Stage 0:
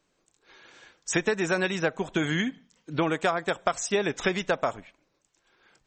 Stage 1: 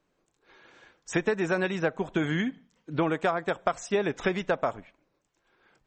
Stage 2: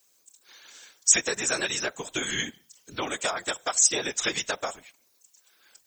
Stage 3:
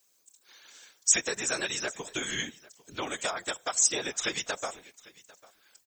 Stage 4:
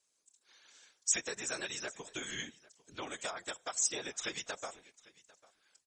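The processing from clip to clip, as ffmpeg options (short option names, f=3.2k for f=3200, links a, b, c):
-af "highshelf=f=3.2k:g=-11.5"
-af "bass=f=250:g=-8,treble=f=4k:g=13,crystalizer=i=7.5:c=0,afftfilt=real='hypot(re,im)*cos(2*PI*random(0))':imag='hypot(re,im)*sin(2*PI*random(1))':win_size=512:overlap=0.75"
-af "aecho=1:1:798:0.075,volume=-3.5dB"
-af "volume=-7.5dB" -ar 24000 -c:a libmp3lame -b:a 160k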